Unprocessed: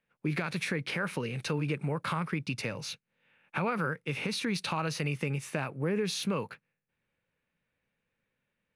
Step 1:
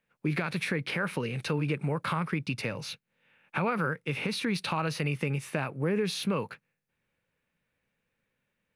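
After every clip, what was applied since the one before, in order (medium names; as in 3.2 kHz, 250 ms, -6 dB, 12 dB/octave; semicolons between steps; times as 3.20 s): dynamic bell 6.7 kHz, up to -6 dB, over -54 dBFS, Q 1.5; trim +2 dB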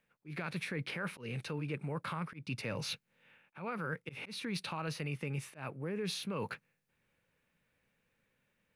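reverse; compression 8:1, threshold -37 dBFS, peak gain reduction 13 dB; reverse; slow attack 145 ms; trim +2 dB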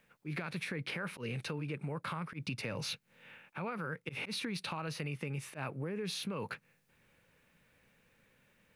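compression, threshold -45 dBFS, peak gain reduction 11.5 dB; trim +9 dB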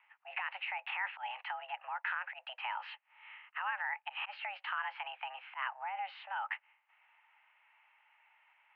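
mistuned SSB +380 Hz 430–2300 Hz; trim +4.5 dB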